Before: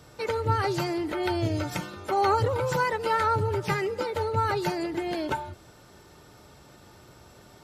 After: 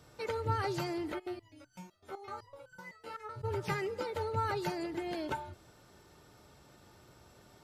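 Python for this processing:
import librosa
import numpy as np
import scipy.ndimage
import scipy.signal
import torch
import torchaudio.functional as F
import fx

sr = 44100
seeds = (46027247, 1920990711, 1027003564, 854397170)

y = fx.resonator_held(x, sr, hz=7.9, low_hz=79.0, high_hz=1500.0, at=(1.18, 3.43), fade=0.02)
y = F.gain(torch.from_numpy(y), -7.5).numpy()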